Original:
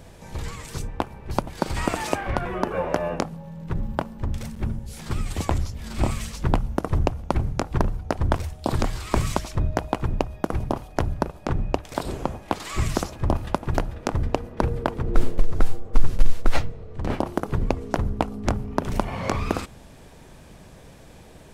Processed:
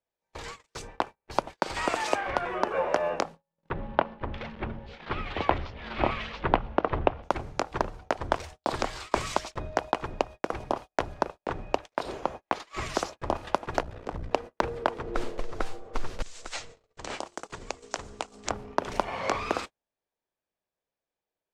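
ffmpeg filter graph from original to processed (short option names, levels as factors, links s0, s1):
-filter_complex "[0:a]asettb=1/sr,asplit=3[s0][s1][s2];[s0]atrim=end=3.704[s3];[s1]atrim=start=3.7:end=7.23,asetpts=PTS-STARTPTS,afade=t=in:d=0.004:c=qsin,afade=t=out:st=3.526:d=0.004:c=qsin,lowpass=f=3300:w=0.5412,lowpass=f=3300:w=1.3066,acontrast=25[s4];[s2]atrim=start=7.226[s5];[s3][s4]acrossfade=d=0.004:c1=hsin:c2=qsin[s6];[s6][s5]acrossfade=d=0.004:c1=qsin:c2=hsin,asettb=1/sr,asplit=3[s7][s8][s9];[s7]atrim=end=11.914[s10];[s8]atrim=start=11.91:end=12.94,asetpts=PTS-STARTPTS,afade=t=in:d=0.004:c=qsin,afade=t=out:st=1.026:d=0.004:c=qsin,highshelf=f=3200:g=-3.5,bandreject=f=7900:w=11[s11];[s9]atrim=start=12.936[s12];[s10][s11]acrossfade=d=0.004:c1=hsin:c2=qsin[s13];[s13][s12]acrossfade=d=0.004:c1=qsin:c2=hsin,asettb=1/sr,asplit=3[s14][s15][s16];[s14]atrim=end=13.824[s17];[s15]atrim=start=13.82:end=14.31,asetpts=PTS-STARTPTS,afade=t=in:d=0.004:c=qsin,afade=t=out:st=0.486:d=0.004:c=qsin,lowshelf=f=260:g=11.5,acompressor=threshold=0.126:ratio=2:attack=3.2:release=140:knee=1:detection=peak,aeval=exprs='val(0)*sin(2*PI*30*n/s)':c=same[s18];[s16]atrim=start=14.306[s19];[s17][s18]acrossfade=d=0.004:c1=hsin:c2=qsin[s20];[s20][s19]acrossfade=d=0.004:c1=qsin:c2=hsin,asettb=1/sr,asplit=3[s21][s22][s23];[s21]atrim=end=16.224[s24];[s22]atrim=start=16.22:end=18.5,asetpts=PTS-STARTPTS,afade=t=in:d=0.004:c=qsin,afade=t=out:st=2.276:d=0.004:c=qsin,highshelf=f=2100:g=12,acompressor=threshold=0.0355:ratio=3:attack=3.2:release=140:knee=1:detection=peak,lowpass=f=7700:t=q:w=3[s25];[s23]atrim=start=18.496[s26];[s24][s25]acrossfade=d=0.004:c1=hsin:c2=qsin[s27];[s27][s26]acrossfade=d=0.004:c1=qsin:c2=hsin,agate=range=0.01:threshold=0.0251:ratio=16:detection=peak,acrossover=split=360 7800:gain=0.158 1 0.158[s28][s29][s30];[s28][s29][s30]amix=inputs=3:normalize=0"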